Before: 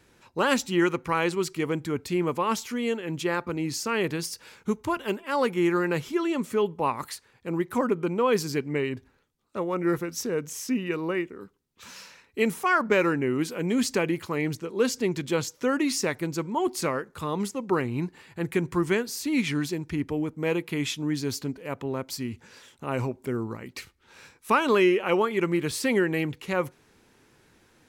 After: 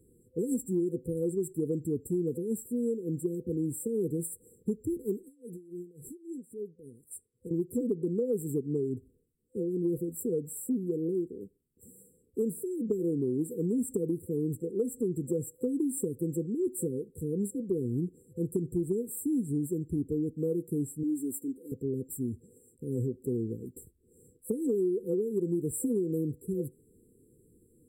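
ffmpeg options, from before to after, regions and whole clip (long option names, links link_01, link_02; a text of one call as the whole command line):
ffmpeg -i in.wav -filter_complex "[0:a]asettb=1/sr,asplit=3[link_01][link_02][link_03];[link_01]atrim=end=5.234[link_04];[link_02]atrim=start=5.23:end=7.51,asetpts=PTS-STARTPTS,afade=type=in:duration=0.004:curve=qsin,afade=type=out:start_time=2.276:duration=0.004:curve=qsin,equalizer=frequency=9400:width_type=o:width=0.92:gain=7,acompressor=threshold=-32dB:ratio=10:attack=3.2:release=140:knee=1:detection=peak,aeval=exprs='val(0)*pow(10,-19*(0.5-0.5*cos(2*PI*3.6*n/s))/20)':channel_layout=same[link_05];[link_03]atrim=start=7.506[link_06];[link_04][link_05]acrossfade=duration=0.004:curve1=hsin:curve2=qsin[link_07];[link_07][link_06]acrossfade=duration=0.004:curve1=qsin:curve2=hsin,asettb=1/sr,asplit=3[link_08][link_09][link_10];[link_08]atrim=end=21.034[link_11];[link_09]atrim=start=21.03:end=21.72,asetpts=PTS-STARTPTS,afade=type=in:duration=0.004:curve=qsin,afade=type=out:start_time=0.686:duration=0.004:curve=qsin,highpass=frequency=500:poles=1,aecho=1:1:3.4:0.79,atrim=end_sample=30429[link_12];[link_10]atrim=start=21.716[link_13];[link_11][link_12]acrossfade=duration=0.004:curve1=hsin:curve2=qsin[link_14];[link_14][link_13]acrossfade=duration=0.004:curve1=qsin:curve2=hsin,afftfilt=real='re*(1-between(b*sr/4096,510,7400))':imag='im*(1-between(b*sr/4096,510,7400))':win_size=4096:overlap=0.75,acompressor=threshold=-26dB:ratio=6" out.wav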